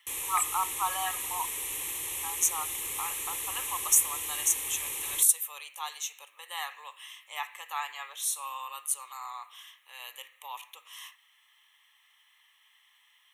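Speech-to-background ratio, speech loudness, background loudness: 2.0 dB, -30.5 LUFS, -32.5 LUFS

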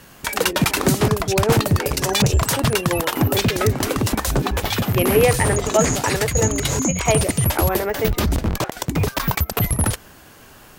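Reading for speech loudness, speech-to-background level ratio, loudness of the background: -24.0 LUFS, -3.5 dB, -20.5 LUFS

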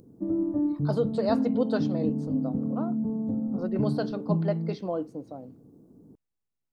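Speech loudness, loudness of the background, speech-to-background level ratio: -32.5 LUFS, -29.0 LUFS, -3.5 dB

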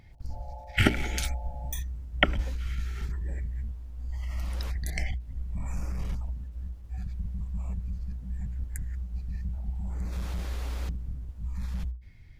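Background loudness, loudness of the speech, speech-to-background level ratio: -48.5 LUFS, -34.0 LUFS, 14.5 dB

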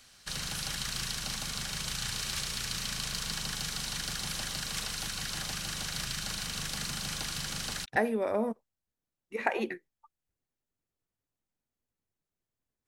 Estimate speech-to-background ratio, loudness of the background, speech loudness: 2.0 dB, -34.0 LUFS, -32.0 LUFS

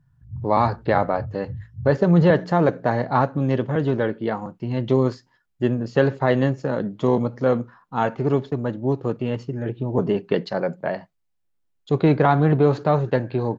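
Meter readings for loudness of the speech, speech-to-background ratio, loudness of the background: -22.0 LUFS, 14.5 dB, -36.5 LUFS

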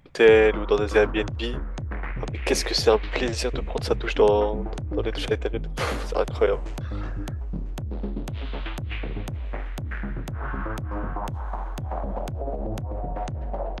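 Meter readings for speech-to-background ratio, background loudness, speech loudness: 9.0 dB, -32.5 LUFS, -23.5 LUFS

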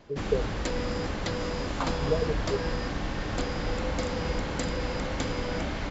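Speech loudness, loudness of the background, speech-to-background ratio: -32.0 LUFS, -31.5 LUFS, -0.5 dB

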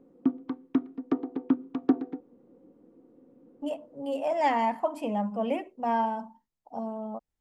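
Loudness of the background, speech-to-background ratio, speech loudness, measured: -31.0 LUFS, 0.5 dB, -30.5 LUFS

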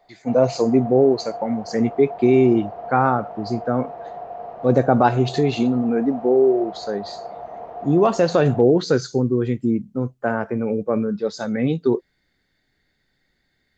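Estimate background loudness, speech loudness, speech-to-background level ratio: -35.0 LUFS, -20.0 LUFS, 15.0 dB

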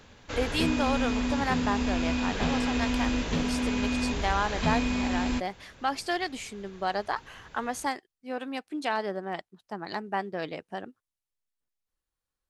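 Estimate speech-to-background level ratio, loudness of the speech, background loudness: -4.0 dB, -33.0 LUFS, -29.0 LUFS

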